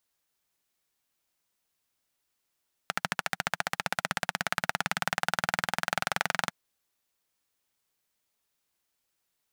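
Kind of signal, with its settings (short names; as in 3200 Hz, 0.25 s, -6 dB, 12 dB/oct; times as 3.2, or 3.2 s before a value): single-cylinder engine model, changing speed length 3.62 s, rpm 1600, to 2700, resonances 180/790/1400 Hz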